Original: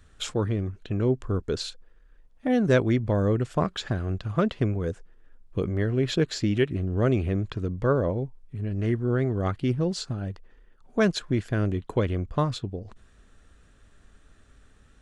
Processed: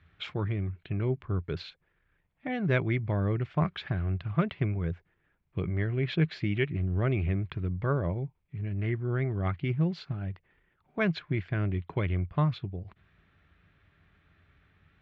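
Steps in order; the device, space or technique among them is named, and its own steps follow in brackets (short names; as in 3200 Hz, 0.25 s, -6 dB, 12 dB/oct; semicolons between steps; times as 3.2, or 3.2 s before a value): guitar cabinet (speaker cabinet 77–3600 Hz, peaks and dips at 87 Hz +7 dB, 160 Hz +8 dB, 240 Hz -8 dB, 490 Hz -8 dB, 2200 Hz +9 dB); gain -4.5 dB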